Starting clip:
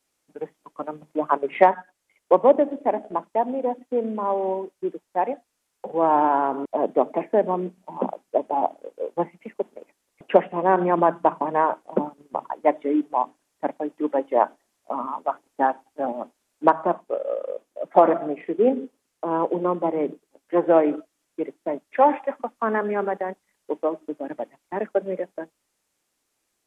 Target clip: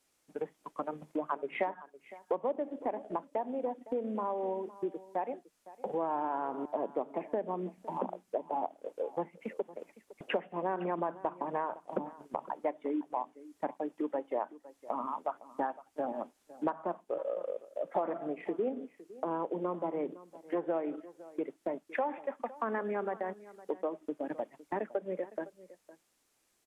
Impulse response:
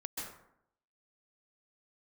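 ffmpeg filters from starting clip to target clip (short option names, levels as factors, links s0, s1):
-filter_complex "[0:a]acompressor=threshold=0.0224:ratio=4,asplit=2[s0][s1];[s1]aecho=0:1:510:0.126[s2];[s0][s2]amix=inputs=2:normalize=0"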